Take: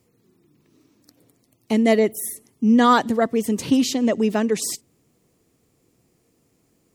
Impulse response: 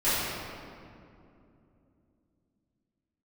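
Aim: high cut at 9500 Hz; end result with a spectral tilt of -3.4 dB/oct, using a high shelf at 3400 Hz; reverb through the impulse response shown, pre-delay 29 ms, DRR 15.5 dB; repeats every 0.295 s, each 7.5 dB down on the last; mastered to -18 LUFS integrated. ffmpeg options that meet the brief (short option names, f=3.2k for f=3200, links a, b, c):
-filter_complex "[0:a]lowpass=9.5k,highshelf=f=3.4k:g=8.5,aecho=1:1:295|590|885|1180|1475:0.422|0.177|0.0744|0.0312|0.0131,asplit=2[a][b];[1:a]atrim=start_sample=2205,adelay=29[c];[b][c]afir=irnorm=-1:irlink=0,volume=-30dB[d];[a][d]amix=inputs=2:normalize=0,volume=0.5dB"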